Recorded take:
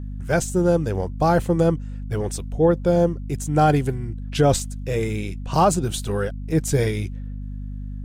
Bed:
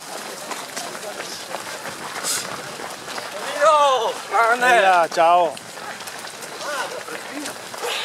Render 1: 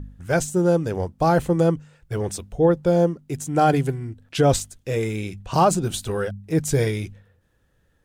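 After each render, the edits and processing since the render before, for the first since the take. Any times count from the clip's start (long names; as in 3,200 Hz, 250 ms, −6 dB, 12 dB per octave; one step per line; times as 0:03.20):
hum removal 50 Hz, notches 5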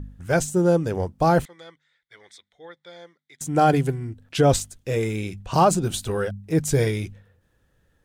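0:01.45–0:03.41: pair of resonant band-passes 2,700 Hz, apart 0.76 octaves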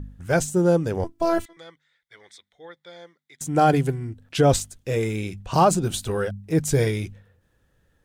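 0:01.04–0:01.57: phases set to zero 335 Hz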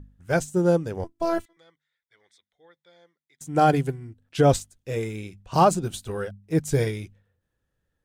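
expander for the loud parts 1.5 to 1, over −39 dBFS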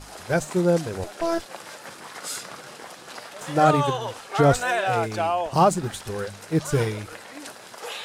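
mix in bed −9.5 dB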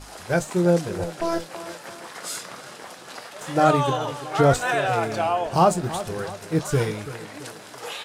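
double-tracking delay 23 ms −12 dB
tape delay 335 ms, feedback 50%, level −12 dB, low-pass 2,400 Hz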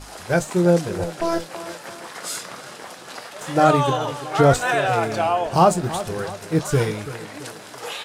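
level +2.5 dB
brickwall limiter −3 dBFS, peak gain reduction 1 dB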